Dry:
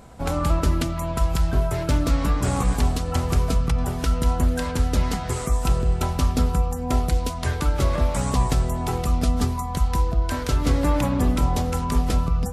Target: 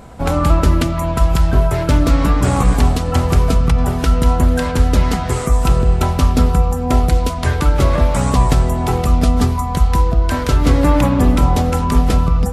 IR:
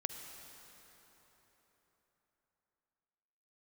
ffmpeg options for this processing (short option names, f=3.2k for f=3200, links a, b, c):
-filter_complex "[0:a]asplit=2[a][b];[1:a]atrim=start_sample=2205,lowpass=4.3k[c];[b][c]afir=irnorm=-1:irlink=0,volume=-6.5dB[d];[a][d]amix=inputs=2:normalize=0,volume=5dB"